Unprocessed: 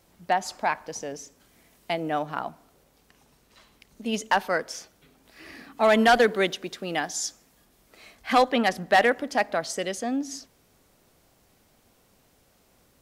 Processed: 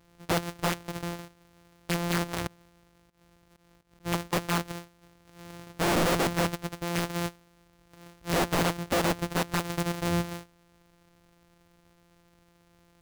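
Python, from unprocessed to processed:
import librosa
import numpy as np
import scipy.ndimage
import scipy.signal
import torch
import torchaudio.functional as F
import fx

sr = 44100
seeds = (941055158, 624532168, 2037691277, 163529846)

y = np.r_[np.sort(x[:len(x) // 256 * 256].reshape(-1, 256), axis=1).ravel(), x[len(x) // 256 * 256:]]
y = (np.mod(10.0 ** (19.5 / 20.0) * y + 1.0, 2.0) - 1.0) / 10.0 ** (19.5 / 20.0)
y = fx.auto_swell(y, sr, attack_ms=150.0, at=(2.47, 4.33))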